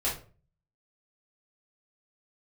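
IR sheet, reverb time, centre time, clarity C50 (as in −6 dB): 0.40 s, 29 ms, 7.0 dB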